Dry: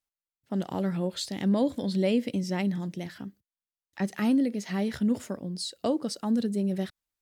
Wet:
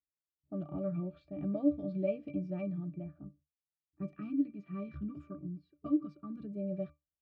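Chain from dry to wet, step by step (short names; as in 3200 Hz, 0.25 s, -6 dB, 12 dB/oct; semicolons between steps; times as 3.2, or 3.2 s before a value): low-pass opened by the level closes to 380 Hz, open at -23.5 dBFS; high shelf 3300 Hz -7.5 dB; octave resonator D, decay 0.18 s; spectral gain 3.8–6.44, 410–960 Hz -12 dB; gain +6 dB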